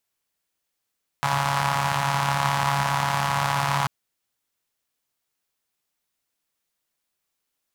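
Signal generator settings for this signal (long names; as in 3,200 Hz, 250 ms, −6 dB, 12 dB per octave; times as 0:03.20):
pulse-train model of a four-cylinder engine, steady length 2.64 s, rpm 4,200, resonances 140/920 Hz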